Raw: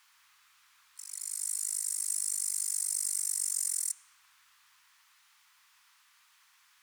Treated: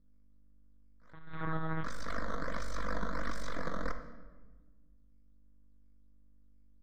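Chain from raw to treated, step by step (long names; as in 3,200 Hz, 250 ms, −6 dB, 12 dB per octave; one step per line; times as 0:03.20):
low-pass that shuts in the quiet parts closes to 2,700 Hz, open at −31.5 dBFS
noise gate −57 dBFS, range −27 dB
mains hum 50 Hz, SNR 26 dB
sample-and-hold swept by an LFO 10×, swing 160% 1.4 Hz
half-wave rectification
high-frequency loss of the air 180 metres
phaser with its sweep stopped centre 540 Hz, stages 8
rectangular room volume 1,000 cubic metres, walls mixed, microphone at 0.73 metres
0:01.13–0:01.84: one-pitch LPC vocoder at 8 kHz 160 Hz
level +1.5 dB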